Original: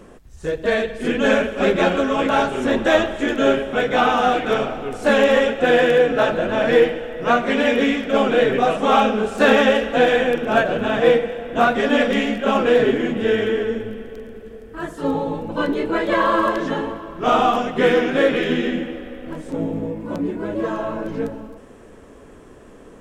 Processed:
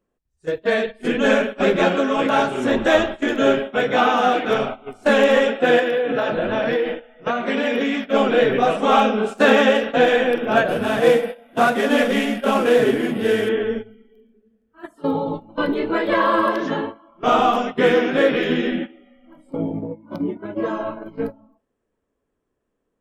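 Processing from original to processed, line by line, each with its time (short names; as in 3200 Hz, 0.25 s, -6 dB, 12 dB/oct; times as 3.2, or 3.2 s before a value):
5.79–8.02 compressor 12:1, threshold -16 dBFS
10.68–13.49 CVSD 64 kbps
whole clip: spectral noise reduction 17 dB; gate -25 dBFS, range -15 dB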